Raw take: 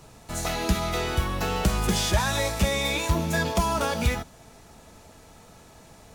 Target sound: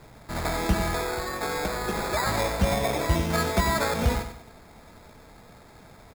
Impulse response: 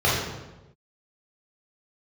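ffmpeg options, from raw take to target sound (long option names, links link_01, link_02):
-filter_complex "[0:a]asettb=1/sr,asplit=3[link_01][link_02][link_03];[link_01]atrim=end=0.954[link_04];[link_02]atrim=start=0.95:end=2.26,asetpts=PTS-STARTPTS,afade=type=in:duration=0.004:curve=qsin,afade=type=out:start_time=1.306:duration=0.004:curve=qsin,bass=frequency=250:gain=-14,treble=frequency=4000:gain=-8[link_05];[link_03]atrim=start=2.256[link_06];[link_04][link_05]acrossfade=duration=0.004:curve1=hsin:curve2=qsin[link_07];[link_07][link_06]acrossfade=duration=0.004:curve1=qsin:curve2=hsin,acrusher=samples=15:mix=1:aa=0.000001,aecho=1:1:95|190|285|380:0.355|0.128|0.046|0.0166"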